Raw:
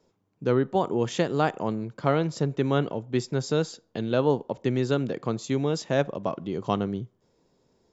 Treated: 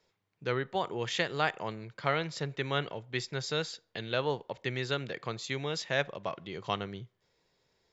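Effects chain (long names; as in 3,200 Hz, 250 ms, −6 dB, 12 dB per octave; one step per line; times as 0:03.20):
octave-band graphic EQ 250/2,000/4,000 Hz −9/+11/+8 dB
level −7 dB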